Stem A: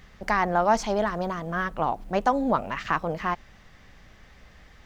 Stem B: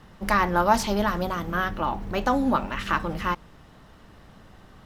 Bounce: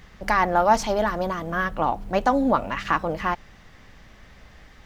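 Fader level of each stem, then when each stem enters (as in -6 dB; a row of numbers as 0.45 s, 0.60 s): +2.5 dB, -8.5 dB; 0.00 s, 0.00 s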